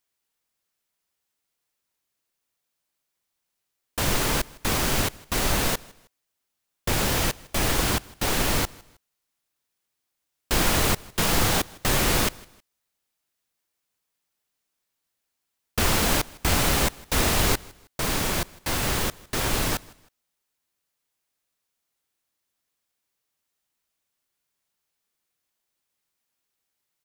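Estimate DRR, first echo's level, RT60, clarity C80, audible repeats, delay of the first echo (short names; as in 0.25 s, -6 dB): none, -23.5 dB, none, none, 2, 0.158 s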